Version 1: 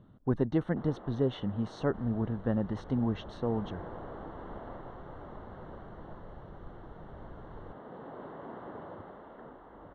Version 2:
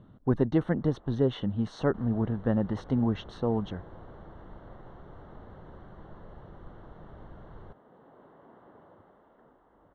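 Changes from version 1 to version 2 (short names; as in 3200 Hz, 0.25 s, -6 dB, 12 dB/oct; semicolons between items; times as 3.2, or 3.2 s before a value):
speech +3.5 dB; first sound -11.0 dB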